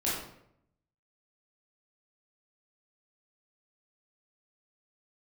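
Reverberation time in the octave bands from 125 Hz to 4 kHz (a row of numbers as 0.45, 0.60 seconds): 1.0, 0.85, 0.80, 0.70, 0.60, 0.50 seconds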